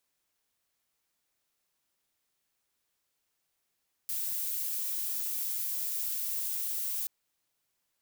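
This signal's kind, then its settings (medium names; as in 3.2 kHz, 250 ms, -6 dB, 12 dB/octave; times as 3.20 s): noise violet, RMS -33.5 dBFS 2.98 s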